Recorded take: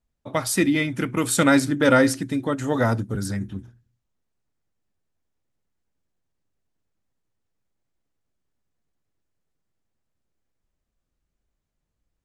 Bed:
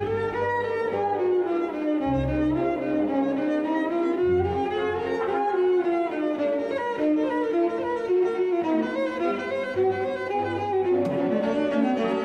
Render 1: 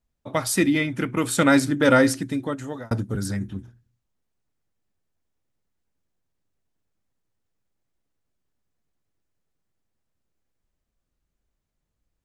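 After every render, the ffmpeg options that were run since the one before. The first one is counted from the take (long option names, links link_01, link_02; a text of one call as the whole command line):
ffmpeg -i in.wav -filter_complex "[0:a]asettb=1/sr,asplit=3[link_01][link_02][link_03];[link_01]atrim=end=0.784[link_04];[link_02]atrim=start=0.78:end=1.5,asetpts=PTS-STARTPTS,afade=type=in:duration=0.004:curve=qsin,afade=type=out:start_time=0.716:duration=0.004:curve=qsin,bass=frequency=250:gain=-1,treble=frequency=4000:gain=-4[link_05];[link_03]atrim=start=1.496[link_06];[link_04][link_05]acrossfade=duration=0.004:curve1=hsin:curve2=qsin[link_07];[link_07][link_06]acrossfade=duration=0.004:curve1=qsin:curve2=hsin,asplit=2[link_08][link_09];[link_08]atrim=end=2.91,asetpts=PTS-STARTPTS,afade=type=out:start_time=2.05:duration=0.86:curve=qsin[link_10];[link_09]atrim=start=2.91,asetpts=PTS-STARTPTS,afade=type=in:duration=0.004:curve=hsin[link_11];[link_10][link_11]concat=n=2:v=0:a=1" out.wav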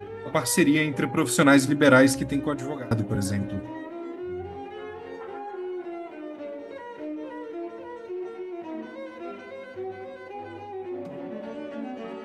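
ffmpeg -i in.wav -i bed.wav -filter_complex "[1:a]volume=-12dB[link_01];[0:a][link_01]amix=inputs=2:normalize=0" out.wav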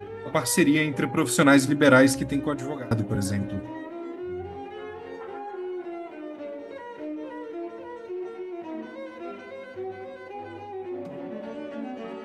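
ffmpeg -i in.wav -af anull out.wav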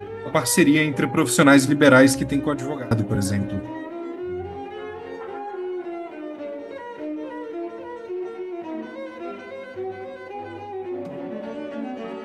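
ffmpeg -i in.wav -af "volume=4dB,alimiter=limit=-2dB:level=0:latency=1" out.wav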